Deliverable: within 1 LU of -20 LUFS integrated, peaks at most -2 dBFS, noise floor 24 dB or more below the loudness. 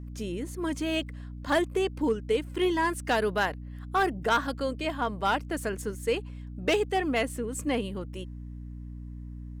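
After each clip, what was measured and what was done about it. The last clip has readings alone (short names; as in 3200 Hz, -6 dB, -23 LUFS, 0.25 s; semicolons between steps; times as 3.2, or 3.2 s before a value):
clipped 0.4%; flat tops at -18.0 dBFS; hum 60 Hz; harmonics up to 300 Hz; hum level -37 dBFS; loudness -29.0 LUFS; peak -18.0 dBFS; loudness target -20.0 LUFS
-> clip repair -18 dBFS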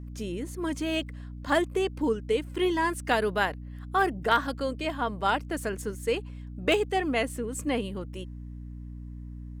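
clipped 0.0%; hum 60 Hz; harmonics up to 300 Hz; hum level -37 dBFS
-> de-hum 60 Hz, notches 5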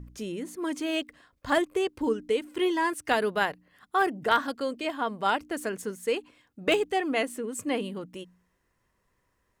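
hum none; loudness -29.0 LUFS; peak -9.0 dBFS; loudness target -20.0 LUFS
-> gain +9 dB; limiter -2 dBFS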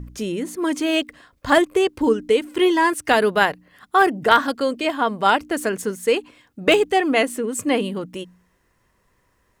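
loudness -20.0 LUFS; peak -2.0 dBFS; noise floor -65 dBFS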